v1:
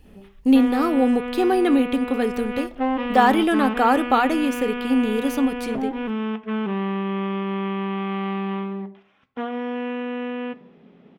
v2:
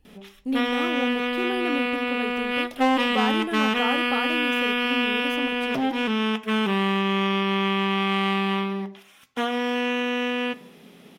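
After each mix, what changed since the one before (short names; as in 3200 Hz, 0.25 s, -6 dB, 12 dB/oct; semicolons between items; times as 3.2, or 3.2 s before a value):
speech -11.0 dB; background: remove tape spacing loss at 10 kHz 43 dB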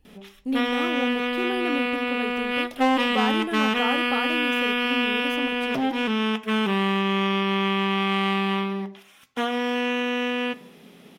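none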